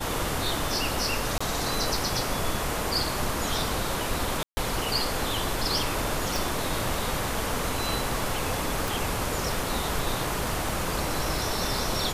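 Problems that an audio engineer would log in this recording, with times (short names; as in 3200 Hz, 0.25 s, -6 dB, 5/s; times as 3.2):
1.38–1.41 gap 25 ms
4.43–4.57 gap 0.14 s
6.36 pop
8.88 pop
10.69 gap 2.3 ms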